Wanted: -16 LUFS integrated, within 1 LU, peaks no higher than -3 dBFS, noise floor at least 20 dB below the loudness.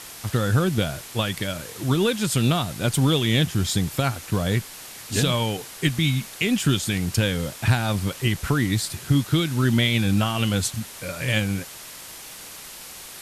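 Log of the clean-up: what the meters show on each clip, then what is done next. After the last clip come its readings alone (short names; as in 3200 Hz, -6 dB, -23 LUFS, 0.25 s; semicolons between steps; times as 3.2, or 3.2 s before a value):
noise floor -40 dBFS; noise floor target -43 dBFS; loudness -23.0 LUFS; peak -8.5 dBFS; loudness target -16.0 LUFS
-> noise print and reduce 6 dB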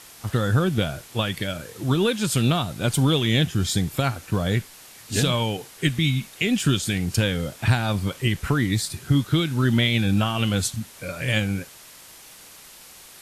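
noise floor -46 dBFS; loudness -23.5 LUFS; peak -9.0 dBFS; loudness target -16.0 LUFS
-> gain +7.5 dB; limiter -3 dBFS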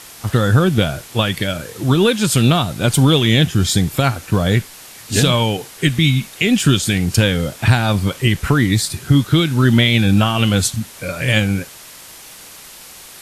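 loudness -16.0 LUFS; peak -3.0 dBFS; noise floor -39 dBFS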